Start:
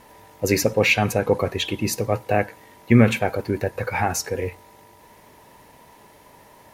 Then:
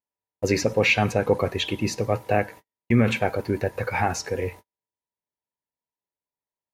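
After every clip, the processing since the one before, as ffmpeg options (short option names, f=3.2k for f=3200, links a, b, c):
-filter_complex "[0:a]acrossover=split=6700[a][b];[b]acompressor=threshold=-49dB:ratio=4:attack=1:release=60[c];[a][c]amix=inputs=2:normalize=0,agate=range=-48dB:threshold=-38dB:ratio=16:detection=peak,alimiter=level_in=6dB:limit=-1dB:release=50:level=0:latency=1,volume=-7dB"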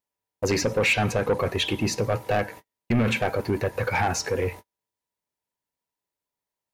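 -filter_complex "[0:a]asplit=2[a][b];[b]acompressor=threshold=-27dB:ratio=6,volume=-2.5dB[c];[a][c]amix=inputs=2:normalize=0,asoftclip=type=tanh:threshold=-16dB"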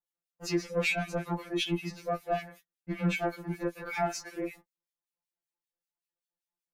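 -filter_complex "[0:a]acrossover=split=1800[a][b];[a]aeval=exprs='val(0)*(1-1/2+1/2*cos(2*PI*5.2*n/s))':c=same[c];[b]aeval=exprs='val(0)*(1-1/2-1/2*cos(2*PI*5.2*n/s))':c=same[d];[c][d]amix=inputs=2:normalize=0,afreqshift=-34,afftfilt=real='re*2.83*eq(mod(b,8),0)':imag='im*2.83*eq(mod(b,8),0)':win_size=2048:overlap=0.75,volume=-2dB"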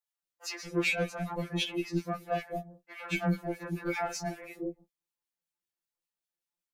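-filter_complex "[0:a]acrossover=split=630[a][b];[a]adelay=230[c];[c][b]amix=inputs=2:normalize=0"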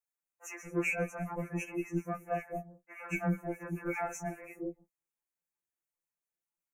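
-af "asuperstop=centerf=4000:order=12:qfactor=1.2,volume=-2.5dB"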